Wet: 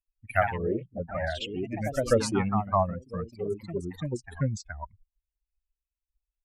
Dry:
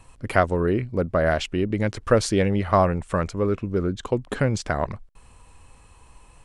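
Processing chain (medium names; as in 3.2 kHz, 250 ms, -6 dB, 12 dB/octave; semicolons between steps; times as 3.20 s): expander on every frequency bin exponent 3; 2.17–3.61 s: transient shaper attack -1 dB, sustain -5 dB; ever faster or slower copies 91 ms, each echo +2 st, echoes 3, each echo -6 dB; trim -1 dB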